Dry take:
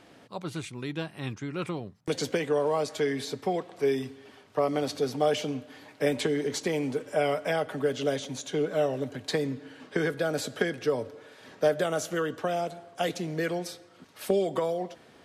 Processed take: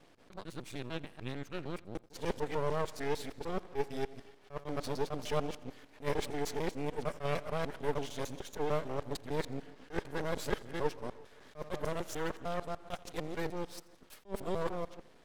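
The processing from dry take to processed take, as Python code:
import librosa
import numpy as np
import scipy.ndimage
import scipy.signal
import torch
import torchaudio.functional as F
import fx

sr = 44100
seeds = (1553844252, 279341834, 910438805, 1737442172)

y = fx.local_reverse(x, sr, ms=150.0)
y = fx.peak_eq(y, sr, hz=410.0, db=2.5, octaves=0.77)
y = np.maximum(y, 0.0)
y = fx.echo_feedback(y, sr, ms=85, feedback_pct=58, wet_db=-22.5)
y = fx.attack_slew(y, sr, db_per_s=290.0)
y = y * 10.0 ** (-4.5 / 20.0)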